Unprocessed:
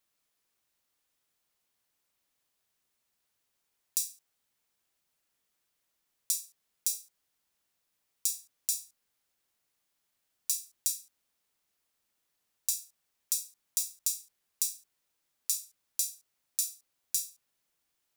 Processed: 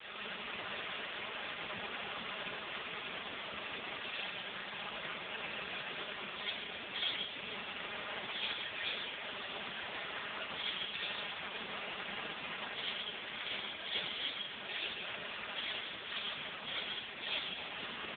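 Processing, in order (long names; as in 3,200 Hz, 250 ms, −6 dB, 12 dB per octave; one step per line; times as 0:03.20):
pitch shifter gated in a rhythm −3.5 semitones, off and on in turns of 78 ms
treble cut that deepens with the level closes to 1,400 Hz, closed at −34 dBFS
parametric band 360 Hz −3.5 dB 2.9 octaves
comb filter 4.9 ms, depth 83%
in parallel at +3 dB: brickwall limiter −18 dBFS, peak gain reduction 8.5 dB
on the sum: compressor whose output falls as the input rises −58 dBFS, ratio −0.5
log-companded quantiser 4 bits
on a send: echo with a time of its own for lows and highs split 2,800 Hz, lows 153 ms, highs 526 ms, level −14 dB
on the sum: comb and all-pass reverb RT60 2.1 s, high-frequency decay 0.75×, pre-delay 20 ms, DRR −9.5 dB
level +18 dB
AMR narrowband 4.75 kbit/s 8,000 Hz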